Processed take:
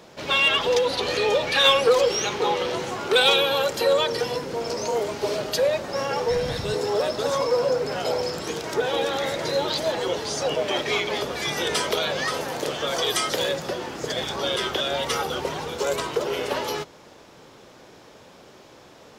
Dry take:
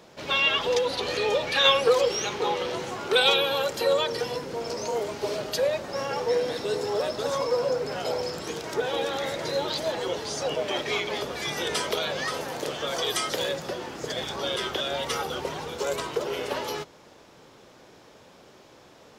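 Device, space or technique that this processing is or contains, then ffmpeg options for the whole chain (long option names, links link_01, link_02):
parallel distortion: -filter_complex "[0:a]asplit=2[link_01][link_02];[link_02]asoftclip=type=hard:threshold=-20.5dB,volume=-5.5dB[link_03];[link_01][link_03]amix=inputs=2:normalize=0,asplit=3[link_04][link_05][link_06];[link_04]afade=type=out:start_time=6.29:duration=0.02[link_07];[link_05]asubboost=boost=12:cutoff=94,afade=type=in:start_time=6.29:duration=0.02,afade=type=out:start_time=6.73:duration=0.02[link_08];[link_06]afade=type=in:start_time=6.73:duration=0.02[link_09];[link_07][link_08][link_09]amix=inputs=3:normalize=0"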